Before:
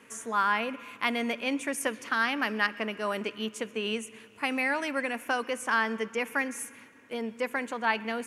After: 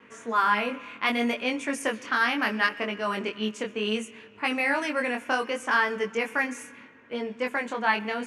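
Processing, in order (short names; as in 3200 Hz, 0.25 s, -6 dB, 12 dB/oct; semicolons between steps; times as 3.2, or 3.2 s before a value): vibrato 1.1 Hz 17 cents; chorus 0.68 Hz, delay 20 ms, depth 4.4 ms; low-pass opened by the level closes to 2800 Hz, open at -27 dBFS; gain +6 dB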